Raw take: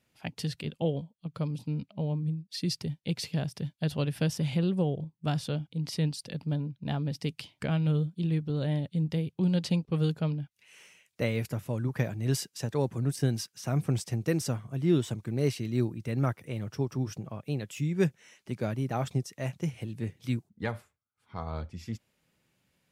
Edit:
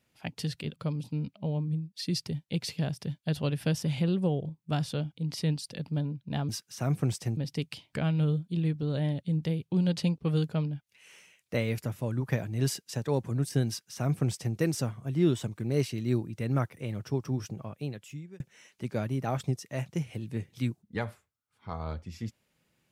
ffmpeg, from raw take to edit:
ffmpeg -i in.wav -filter_complex "[0:a]asplit=5[link_01][link_02][link_03][link_04][link_05];[link_01]atrim=end=0.762[link_06];[link_02]atrim=start=1.308:end=7.042[link_07];[link_03]atrim=start=13.348:end=14.232[link_08];[link_04]atrim=start=7.038:end=18.07,asetpts=PTS-STARTPTS,afade=type=out:start_time=10.252:duration=0.78[link_09];[link_05]atrim=start=18.07,asetpts=PTS-STARTPTS,afade=type=in:duration=0.004:curve=hsin[link_10];[link_06][link_07]acrossfade=duration=0.004:curve1=hsin:curve2=hsin[link_11];[link_11][link_08]acrossfade=duration=0.004:curve1=hsin:curve2=hsin[link_12];[link_09][link_10]concat=n=2:v=0:a=1[link_13];[link_12][link_13]acrossfade=duration=0.004:curve1=hsin:curve2=hsin" out.wav

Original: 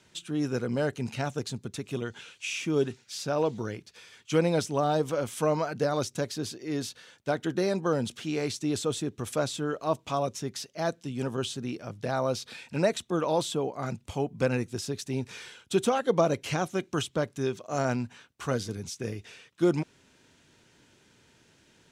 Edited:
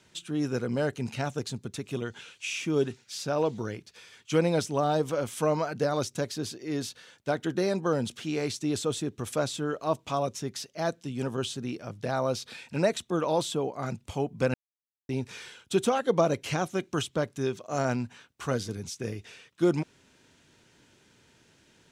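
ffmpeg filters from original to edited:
ffmpeg -i in.wav -filter_complex "[0:a]asplit=3[link_01][link_02][link_03];[link_01]atrim=end=14.54,asetpts=PTS-STARTPTS,afade=type=out:start_time=14.536:duration=0.004:curve=hsin[link_04];[link_02]atrim=start=14.54:end=15.09,asetpts=PTS-STARTPTS,volume=0[link_05];[link_03]atrim=start=15.09,asetpts=PTS-STARTPTS,afade=type=in:duration=0.004:curve=hsin[link_06];[link_04][link_05][link_06]concat=n=3:v=0:a=1" out.wav

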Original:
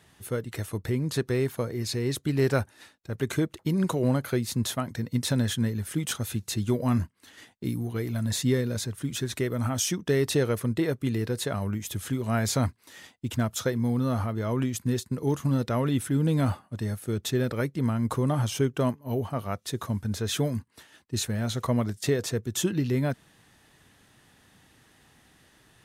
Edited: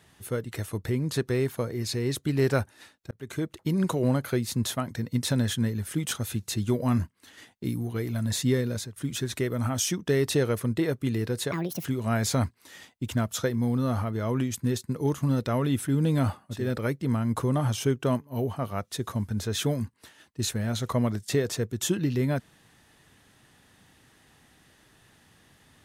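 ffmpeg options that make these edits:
ffmpeg -i in.wav -filter_complex "[0:a]asplit=6[link_01][link_02][link_03][link_04][link_05][link_06];[link_01]atrim=end=3.11,asetpts=PTS-STARTPTS,afade=type=out:start_time=3.106:duration=0.004:curve=hsin[link_07];[link_02]atrim=start=3.11:end=8.96,asetpts=PTS-STARTPTS,afade=type=in:duration=0.71:curve=qsin,afade=type=out:start_time=5.55:duration=0.3:curve=qsin:silence=0.0944061[link_08];[link_03]atrim=start=8.96:end=11.524,asetpts=PTS-STARTPTS,afade=type=in:duration=0.004:curve=hsin:silence=0.0944061[link_09];[link_04]atrim=start=11.52:end=12.07,asetpts=PTS-STARTPTS,asetrate=73647,aresample=44100[link_10];[link_05]atrim=start=12.066:end=16.95[link_11];[link_06]atrim=start=17.23[link_12];[link_07][link_08][link_09]concat=n=3:v=0:a=1[link_13];[link_13][link_10]acrossfade=duration=0.004:curve1=hsin:curve2=hsin[link_14];[link_14][link_11]acrossfade=duration=0.004:curve1=hsin:curve2=hsin[link_15];[link_15][link_12]acrossfade=duration=0.24:curve1=tri:curve2=tri" out.wav

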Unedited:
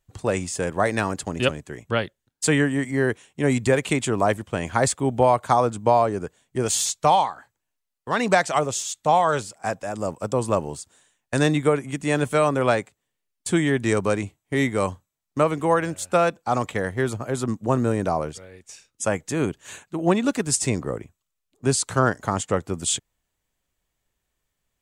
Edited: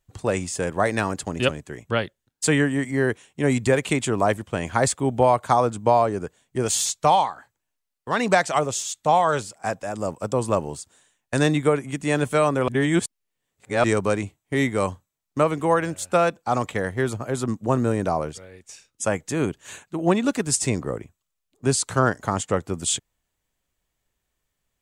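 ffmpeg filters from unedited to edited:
ffmpeg -i in.wav -filter_complex "[0:a]asplit=3[link_01][link_02][link_03];[link_01]atrim=end=12.682[link_04];[link_02]atrim=start=12.678:end=13.842,asetpts=PTS-STARTPTS,areverse[link_05];[link_03]atrim=start=13.838[link_06];[link_04][link_05]acrossfade=duration=0.004:curve1=hsin:curve2=hsin[link_07];[link_07][link_06]acrossfade=duration=0.004:curve1=hsin:curve2=hsin" out.wav

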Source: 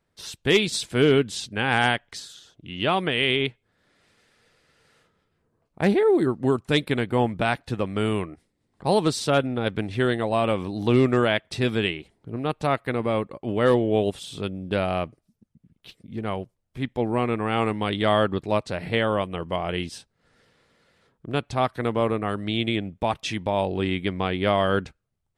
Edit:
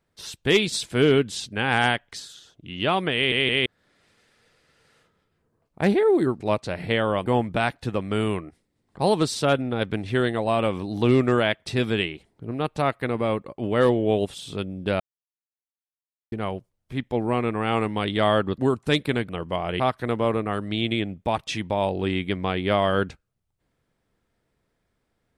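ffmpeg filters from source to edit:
ffmpeg -i in.wav -filter_complex "[0:a]asplit=11[link_01][link_02][link_03][link_04][link_05][link_06][link_07][link_08][link_09][link_10][link_11];[link_01]atrim=end=3.322[link_12];[link_02]atrim=start=3.148:end=3.322[link_13];[link_03]atrim=start=3.148:end=3.322[link_14];[link_04]atrim=start=3.658:end=6.402[link_15];[link_05]atrim=start=18.428:end=19.292[link_16];[link_06]atrim=start=7.108:end=14.85,asetpts=PTS-STARTPTS,afade=type=out:start_time=7.738:duration=0.004:curve=hsin[link_17];[link_07]atrim=start=14.85:end=16.17,asetpts=PTS-STARTPTS,volume=0[link_18];[link_08]atrim=start=16.17:end=18.432,asetpts=PTS-STARTPTS,afade=type=in:duration=0.004:curve=hsin[link_19];[link_09]atrim=start=6.398:end=7.112[link_20];[link_10]atrim=start=19.288:end=19.802[link_21];[link_11]atrim=start=21.558[link_22];[link_12][link_13]acrossfade=duration=0.004:curve1=hsin:curve2=hsin[link_23];[link_23][link_14]acrossfade=duration=0.004:curve1=hsin:curve2=hsin[link_24];[link_24][link_15]acrossfade=duration=0.004:curve1=hsin:curve2=hsin[link_25];[link_25][link_16]acrossfade=duration=0.004:curve1=hsin:curve2=hsin[link_26];[link_17][link_18][link_19]concat=n=3:v=0:a=1[link_27];[link_26][link_27]acrossfade=duration=0.004:curve1=hsin:curve2=hsin[link_28];[link_28][link_20]acrossfade=duration=0.004:curve1=hsin:curve2=hsin[link_29];[link_29][link_21]acrossfade=duration=0.004:curve1=hsin:curve2=hsin[link_30];[link_30][link_22]acrossfade=duration=0.004:curve1=hsin:curve2=hsin" out.wav

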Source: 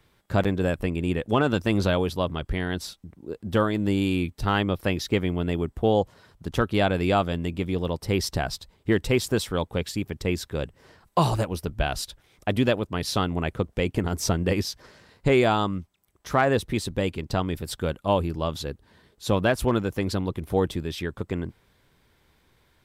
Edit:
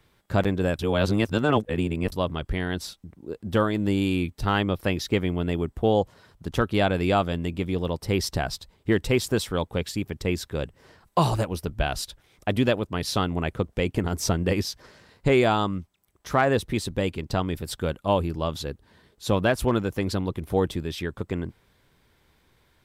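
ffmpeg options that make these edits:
ffmpeg -i in.wav -filter_complex "[0:a]asplit=3[link_01][link_02][link_03];[link_01]atrim=end=0.792[link_04];[link_02]atrim=start=0.788:end=2.122,asetpts=PTS-STARTPTS,areverse[link_05];[link_03]atrim=start=2.118[link_06];[link_04][link_05]acrossfade=duration=0.004:curve1=hsin:curve2=hsin[link_07];[link_07][link_06]acrossfade=duration=0.004:curve1=hsin:curve2=hsin" out.wav

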